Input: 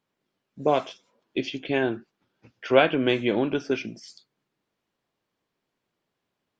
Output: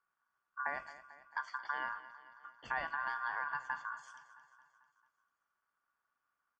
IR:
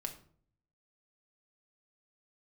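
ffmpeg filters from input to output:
-af "firequalizer=gain_entry='entry(150,0);entry(220,-10);entry(910,-18);entry(2100,-20)':delay=0.05:min_phase=1,acompressor=threshold=-40dB:ratio=4,aeval=exprs='val(0)*sin(2*PI*1300*n/s)':channel_layout=same,asuperstop=centerf=3900:order=12:qfactor=5.2,aecho=1:1:222|444|666|888|1110|1332:0.178|0.103|0.0598|0.0347|0.0201|0.0117,volume=7dB"

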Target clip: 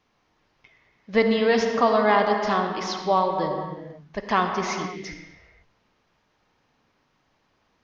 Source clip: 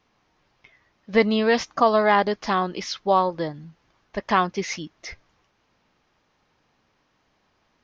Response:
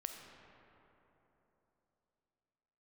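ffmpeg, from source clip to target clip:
-filter_complex "[1:a]atrim=start_sample=2205,afade=type=out:start_time=0.42:duration=0.01,atrim=end_sample=18963,asetrate=32193,aresample=44100[link_01];[0:a][link_01]afir=irnorm=-1:irlink=0"

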